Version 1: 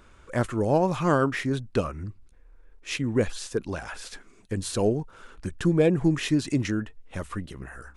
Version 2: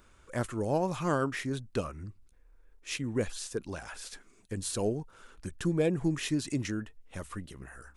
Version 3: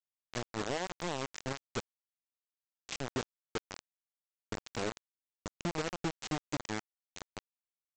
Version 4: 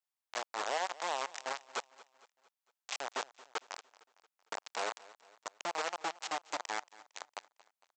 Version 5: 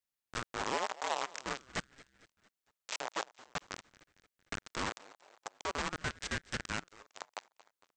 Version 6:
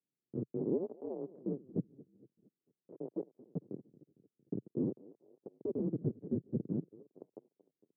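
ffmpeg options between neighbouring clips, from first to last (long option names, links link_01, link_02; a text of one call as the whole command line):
ffmpeg -i in.wav -af "highshelf=frequency=6000:gain=9,volume=-7dB" out.wav
ffmpeg -i in.wav -af "acompressor=threshold=-30dB:ratio=8,aresample=16000,acrusher=bits=4:mix=0:aa=0.000001,aresample=44100,volume=-3.5dB" out.wav
ffmpeg -i in.wav -af "highpass=frequency=770:width_type=q:width=1.7,aecho=1:1:228|456|684|912:0.1|0.05|0.025|0.0125,volume=1dB" out.wav
ffmpeg -i in.wav -af "aeval=exprs='val(0)*sin(2*PI*460*n/s+460*0.85/0.47*sin(2*PI*0.47*n/s))':channel_layout=same,volume=3dB" out.wav
ffmpeg -i in.wav -af "asuperpass=centerf=230:order=8:qfactor=0.76,volume=10.5dB" out.wav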